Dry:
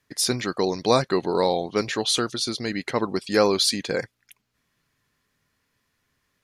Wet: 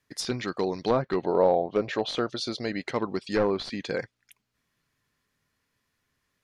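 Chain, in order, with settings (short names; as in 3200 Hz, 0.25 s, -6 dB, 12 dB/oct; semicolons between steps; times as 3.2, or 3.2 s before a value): one-sided fold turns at -15.5 dBFS; 1.23–2.89 bell 610 Hz +8.5 dB 0.75 oct; treble ducked by the level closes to 1400 Hz, closed at -16 dBFS; gain -4 dB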